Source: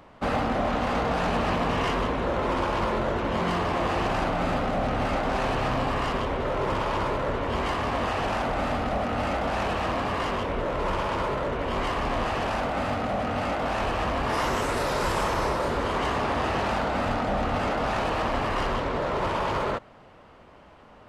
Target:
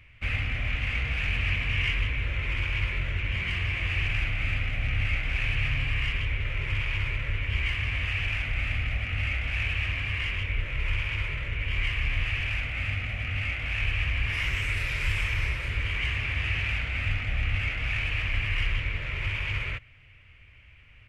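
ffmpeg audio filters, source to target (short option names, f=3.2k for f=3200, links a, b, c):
-af "firequalizer=gain_entry='entry(110,0);entry(180,-22);entry(840,-30);entry(2300,6);entry(3900,-14)':delay=0.05:min_phase=1,volume=5.5dB"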